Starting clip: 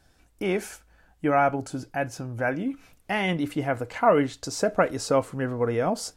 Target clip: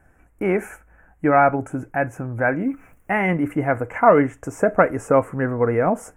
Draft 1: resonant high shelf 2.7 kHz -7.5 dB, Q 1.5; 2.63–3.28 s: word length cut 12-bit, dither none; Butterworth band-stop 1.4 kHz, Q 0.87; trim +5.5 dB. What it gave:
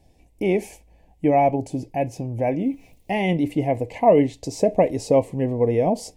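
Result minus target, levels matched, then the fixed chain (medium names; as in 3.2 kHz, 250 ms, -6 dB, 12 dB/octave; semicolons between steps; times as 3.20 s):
4 kHz band +11.5 dB
resonant high shelf 2.7 kHz -7.5 dB, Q 1.5; 2.63–3.28 s: word length cut 12-bit, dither none; Butterworth band-stop 4.2 kHz, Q 0.87; trim +5.5 dB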